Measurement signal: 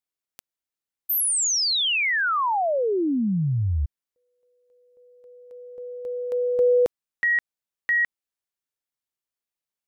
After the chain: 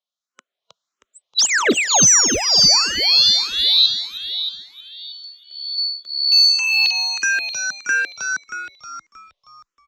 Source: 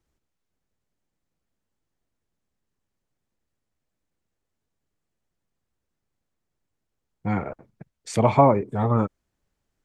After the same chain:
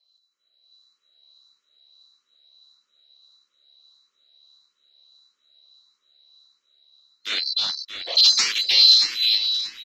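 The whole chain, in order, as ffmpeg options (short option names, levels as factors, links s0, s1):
-filter_complex "[0:a]afftfilt=real='real(if(lt(b,736),b+184*(1-2*mod(floor(b/184),2)),b),0)':imag='imag(if(lt(b,736),b+184*(1-2*mod(floor(b/184),2)),b),0)':win_size=2048:overlap=0.75,superequalizer=6b=0.631:8b=2.24:10b=2.24:13b=2,dynaudnorm=f=150:g=9:m=3.55,aresample=16000,aeval=exprs='0.224*(abs(mod(val(0)/0.224+3,4)-2)-1)':c=same,aresample=44100,acrossover=split=2400[s0][s1];[s0]aeval=exprs='val(0)*(1-0.7/2+0.7/2*cos(2*PI*1.6*n/s))':c=same[s2];[s1]aeval=exprs='val(0)*(1-0.7/2-0.7/2*cos(2*PI*1.6*n/s))':c=same[s3];[s2][s3]amix=inputs=2:normalize=0,acontrast=57,highpass=f=200:w=0.5412,highpass=f=200:w=1.3066,asplit=2[s4][s5];[s5]asplit=7[s6][s7][s8][s9][s10][s11][s12];[s6]adelay=315,afreqshift=-71,volume=0.668[s13];[s7]adelay=630,afreqshift=-142,volume=0.335[s14];[s8]adelay=945,afreqshift=-213,volume=0.168[s15];[s9]adelay=1260,afreqshift=-284,volume=0.0832[s16];[s10]adelay=1575,afreqshift=-355,volume=0.0417[s17];[s11]adelay=1890,afreqshift=-426,volume=0.0209[s18];[s12]adelay=2205,afreqshift=-497,volume=0.0105[s19];[s13][s14][s15][s16][s17][s18][s19]amix=inputs=7:normalize=0[s20];[s4][s20]amix=inputs=2:normalize=0,asplit=2[s21][s22];[s22]afreqshift=1.6[s23];[s21][s23]amix=inputs=2:normalize=1"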